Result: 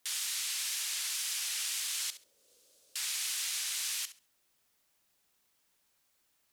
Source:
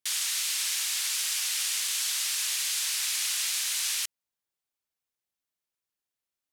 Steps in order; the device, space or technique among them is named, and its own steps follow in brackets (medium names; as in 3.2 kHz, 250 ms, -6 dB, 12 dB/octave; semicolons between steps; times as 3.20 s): 2.10–2.96 s: elliptic low-pass 540 Hz, stop band 40 dB; flutter echo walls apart 11.5 m, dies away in 0.29 s; noise-reduction cassette on a plain deck (tape noise reduction on one side only encoder only; wow and flutter; white noise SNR 36 dB); trim -6 dB